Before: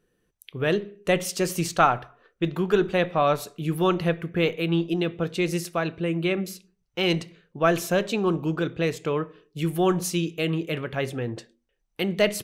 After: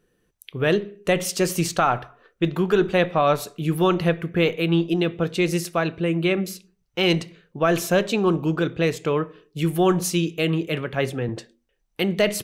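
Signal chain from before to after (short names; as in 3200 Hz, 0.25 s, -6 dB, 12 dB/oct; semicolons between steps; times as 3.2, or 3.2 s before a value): maximiser +11.5 dB; 10.67–11.29 three-band expander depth 40%; gain -8 dB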